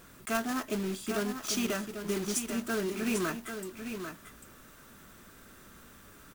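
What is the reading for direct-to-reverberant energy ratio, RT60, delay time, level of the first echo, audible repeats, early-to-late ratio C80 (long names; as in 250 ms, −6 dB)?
no reverb audible, no reverb audible, 795 ms, −8.0 dB, 1, no reverb audible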